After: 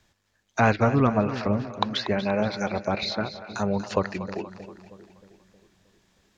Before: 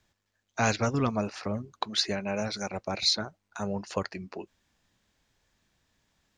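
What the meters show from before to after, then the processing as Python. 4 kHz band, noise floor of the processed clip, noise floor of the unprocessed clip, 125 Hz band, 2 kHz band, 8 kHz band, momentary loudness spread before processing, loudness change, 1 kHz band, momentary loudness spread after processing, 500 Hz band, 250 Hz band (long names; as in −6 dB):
−3.0 dB, −71 dBFS, −79 dBFS, +7.0 dB, +5.0 dB, −8.0 dB, 14 LU, +4.0 dB, +6.5 dB, 13 LU, +7.0 dB, +7.0 dB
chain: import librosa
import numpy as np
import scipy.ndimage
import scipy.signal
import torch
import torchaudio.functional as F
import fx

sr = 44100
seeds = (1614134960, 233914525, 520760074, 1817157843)

p1 = fx.env_lowpass_down(x, sr, base_hz=2000.0, full_db=-27.0)
p2 = p1 + fx.echo_split(p1, sr, split_hz=520.0, low_ms=314, high_ms=238, feedback_pct=52, wet_db=-12.0, dry=0)
y = F.gain(torch.from_numpy(p2), 6.5).numpy()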